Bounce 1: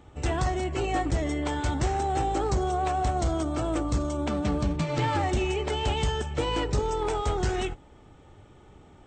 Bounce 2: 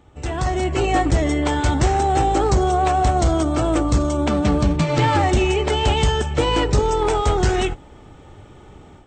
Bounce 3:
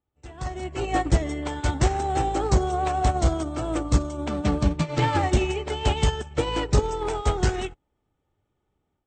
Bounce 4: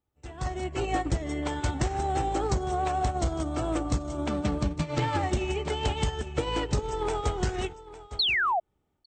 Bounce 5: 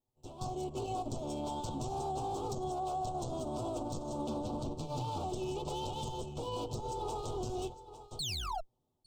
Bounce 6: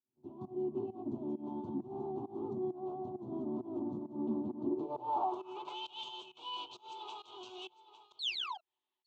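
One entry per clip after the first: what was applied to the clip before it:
level rider gain up to 9 dB
upward expansion 2.5:1, over -34 dBFS
painted sound fall, 8.19–8.60 s, 640–4500 Hz -19 dBFS; delay 855 ms -18 dB; compression, threshold -24 dBFS, peak gain reduction 10 dB
comb filter that takes the minimum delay 8 ms; Chebyshev band-stop 930–3600 Hz, order 2; peak limiter -27 dBFS, peak gain reduction 9.5 dB; trim -2.5 dB
band-pass sweep 210 Hz -> 2.9 kHz, 4.52–5.89 s; volume shaper 133 bpm, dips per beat 1, -23 dB, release 194 ms; cabinet simulation 130–6100 Hz, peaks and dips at 160 Hz -8 dB, 360 Hz +9 dB, 510 Hz -9 dB, 1 kHz +9 dB, 1.8 kHz +7 dB, 5.2 kHz -9 dB; trim +7 dB

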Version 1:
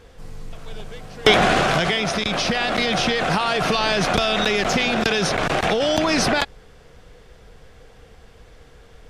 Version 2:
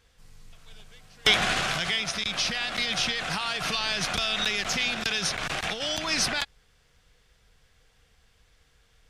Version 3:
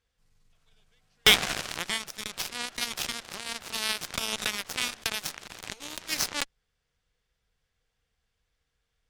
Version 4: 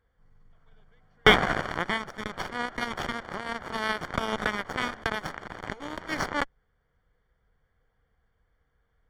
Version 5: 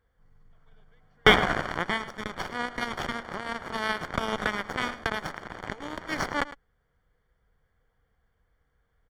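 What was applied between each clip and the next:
amplifier tone stack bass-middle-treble 5-5-5; in parallel at -3 dB: peak limiter -23 dBFS, peak gain reduction 11 dB; on the sum: upward expansion 1.5:1, over -41 dBFS; trim +4 dB
Chebyshev shaper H 5 -18 dB, 7 -12 dB, 8 -32 dB, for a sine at -7 dBFS; trim +2 dB
Savitzky-Golay filter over 41 samples; trim +8.5 dB
delay 107 ms -16 dB

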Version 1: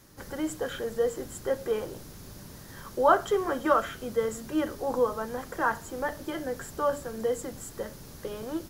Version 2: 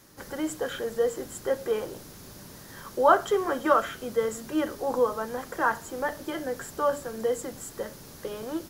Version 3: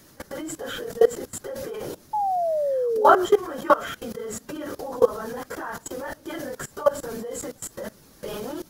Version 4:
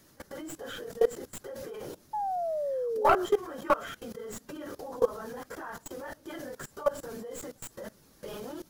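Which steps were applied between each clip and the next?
bass shelf 130 Hz -8.5 dB; trim +2 dB
phase randomisation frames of 50 ms; level held to a coarse grid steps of 20 dB; painted sound fall, 2.13–3.26 s, 350–870 Hz -31 dBFS; trim +7.5 dB
tracing distortion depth 0.072 ms; trim -7.5 dB

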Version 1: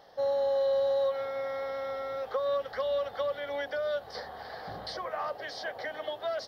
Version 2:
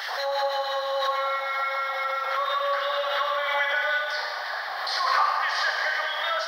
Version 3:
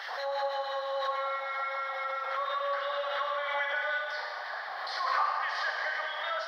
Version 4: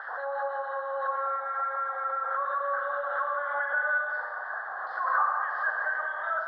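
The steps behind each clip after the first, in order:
LFO high-pass sine 6.1 Hz 970–2100 Hz; Schroeder reverb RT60 2.4 s, combs from 33 ms, DRR -2 dB; swell ahead of each attack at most 28 dB/s; trim +6 dB
low-pass 2.9 kHz 6 dB/octave; trim -5.5 dB
FFT filter 870 Hz 0 dB, 1.6 kHz +7 dB, 2.3 kHz -26 dB, 3.4 kHz -21 dB, 6.4 kHz -29 dB

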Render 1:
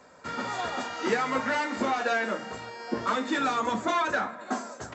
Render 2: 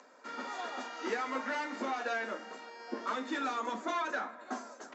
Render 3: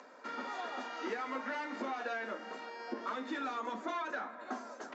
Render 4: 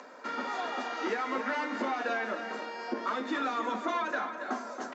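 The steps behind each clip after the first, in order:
upward compressor, threshold -46 dBFS; elliptic band-pass 250–6700 Hz, stop band 40 dB; trim -7.5 dB
compression 2:1, threshold -44 dBFS, peak gain reduction 8.5 dB; distance through air 86 m; trim +4 dB
delay 277 ms -9.5 dB; trim +6 dB

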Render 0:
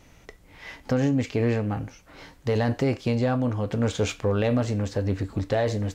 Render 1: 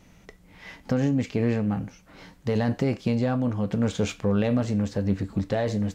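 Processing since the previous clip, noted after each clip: peaking EQ 190 Hz +11 dB 0.44 oct; trim -2.5 dB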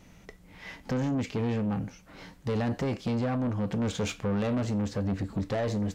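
saturation -24.5 dBFS, distortion -11 dB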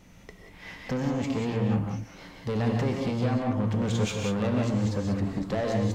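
reverberation, pre-delay 3 ms, DRR 1 dB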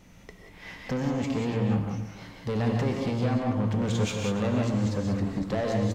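delay 288 ms -15.5 dB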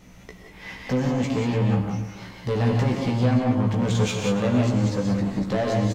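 doubling 16 ms -4 dB; trim +3 dB

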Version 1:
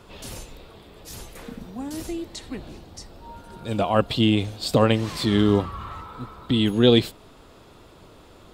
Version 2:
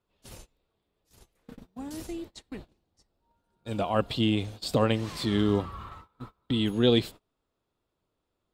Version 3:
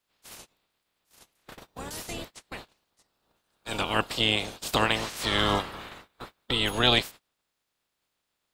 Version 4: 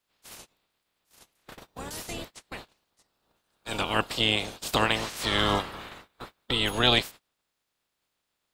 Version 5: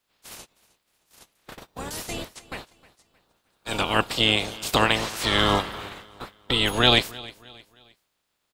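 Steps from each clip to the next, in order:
gate -35 dBFS, range -26 dB; trim -6 dB
spectral peaks clipped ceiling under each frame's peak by 24 dB
no audible change
feedback delay 311 ms, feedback 38%, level -21 dB; trim +4 dB

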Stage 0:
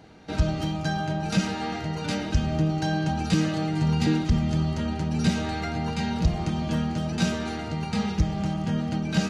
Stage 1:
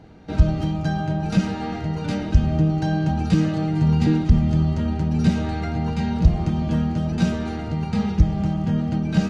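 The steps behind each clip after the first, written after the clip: tilt EQ -2 dB/octave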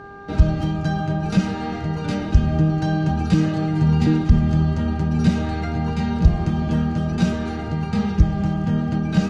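mains buzz 400 Hz, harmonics 4, -41 dBFS -1 dB/octave; trim +1 dB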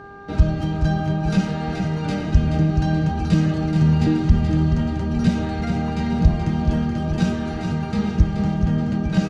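feedback delay 428 ms, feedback 48%, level -7 dB; trim -1 dB

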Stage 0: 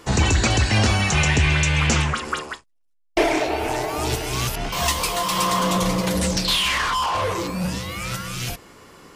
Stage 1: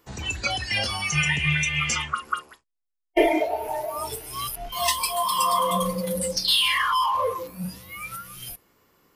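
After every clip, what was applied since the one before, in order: spectral noise reduction 18 dB; trim +1 dB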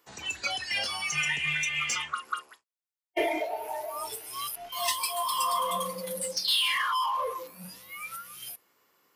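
high-pass 660 Hz 6 dB/octave; in parallel at -4.5 dB: saturation -24 dBFS, distortion -11 dB; on the sum: trim -7 dB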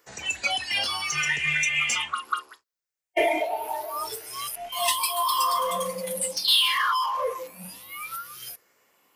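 drifting ripple filter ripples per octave 0.55, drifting +0.7 Hz, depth 6 dB; peaking EQ 170 Hz -4 dB 0.49 oct; trim +3.5 dB

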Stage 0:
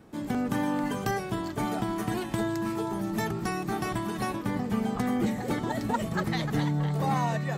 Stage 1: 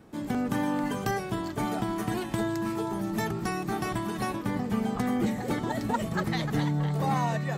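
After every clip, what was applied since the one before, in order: no audible change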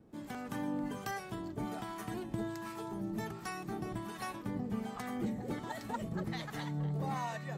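harmonic tremolo 1.3 Hz, depth 70%, crossover 650 Hz; trim -6.5 dB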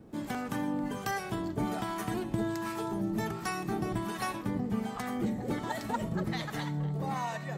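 gain riding within 3 dB 0.5 s; on a send at -16 dB: reverberation RT60 0.50 s, pre-delay 30 ms; on the sum: trim +5.5 dB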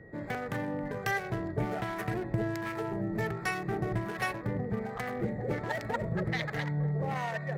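local Wiener filter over 15 samples; graphic EQ 125/250/500/1000/2000/8000 Hz +5/-10/+7/-6/+9/-3 dB; whistle 1.9 kHz -57 dBFS; trim +1.5 dB

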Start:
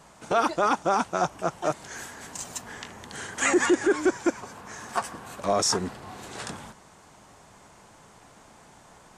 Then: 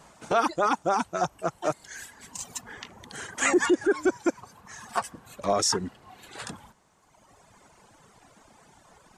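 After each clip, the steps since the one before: reverb removal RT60 2 s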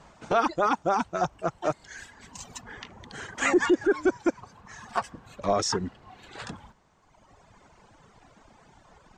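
boxcar filter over 4 samples; bass shelf 72 Hz +9.5 dB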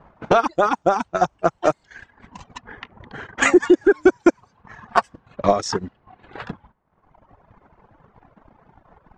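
transient shaper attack +9 dB, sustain -10 dB; level-controlled noise filter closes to 1.5 kHz, open at -18 dBFS; trim +2.5 dB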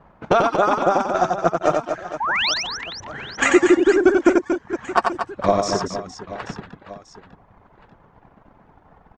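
painted sound rise, 2.20–2.54 s, 800–6200 Hz -21 dBFS; on a send: reverse bouncing-ball echo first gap 90 ms, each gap 1.6×, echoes 5; on the sum: trim -1 dB

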